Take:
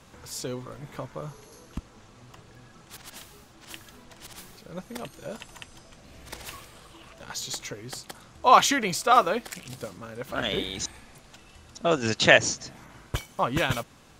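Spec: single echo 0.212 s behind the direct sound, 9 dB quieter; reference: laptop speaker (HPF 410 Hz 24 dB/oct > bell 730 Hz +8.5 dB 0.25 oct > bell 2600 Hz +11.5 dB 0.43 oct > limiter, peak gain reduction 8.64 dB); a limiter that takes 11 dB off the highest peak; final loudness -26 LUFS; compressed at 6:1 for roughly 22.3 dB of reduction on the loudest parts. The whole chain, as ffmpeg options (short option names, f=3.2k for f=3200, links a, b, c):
-af "acompressor=threshold=-36dB:ratio=6,alimiter=level_in=8.5dB:limit=-24dB:level=0:latency=1,volume=-8.5dB,highpass=f=410:w=0.5412,highpass=f=410:w=1.3066,equalizer=f=730:t=o:w=0.25:g=8.5,equalizer=f=2.6k:t=o:w=0.43:g=11.5,aecho=1:1:212:0.355,volume=19dB,alimiter=limit=-15.5dB:level=0:latency=1"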